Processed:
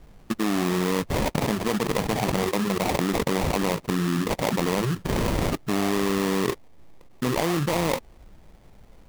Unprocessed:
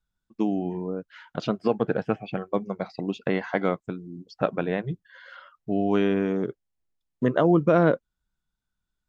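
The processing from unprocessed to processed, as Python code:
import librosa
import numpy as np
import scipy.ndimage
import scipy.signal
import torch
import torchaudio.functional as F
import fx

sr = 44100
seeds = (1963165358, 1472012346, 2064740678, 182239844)

y = fx.sample_hold(x, sr, seeds[0], rate_hz=1500.0, jitter_pct=20)
y = fx.env_flatten(y, sr, amount_pct=100)
y = y * 10.0 ** (-7.5 / 20.0)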